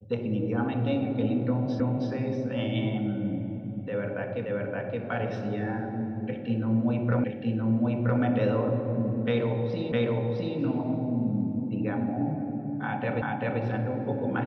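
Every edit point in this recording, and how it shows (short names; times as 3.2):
1.8 repeat of the last 0.32 s
4.46 repeat of the last 0.57 s
7.24 repeat of the last 0.97 s
9.92 repeat of the last 0.66 s
13.22 repeat of the last 0.39 s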